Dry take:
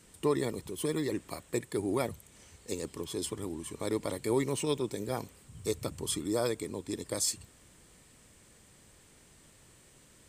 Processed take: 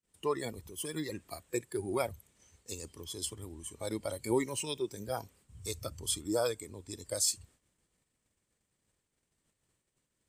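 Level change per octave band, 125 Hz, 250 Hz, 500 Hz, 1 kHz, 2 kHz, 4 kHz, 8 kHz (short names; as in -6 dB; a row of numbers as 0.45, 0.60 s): -4.5, -5.0, -3.0, -1.0, -1.5, 0.0, +0.5 dB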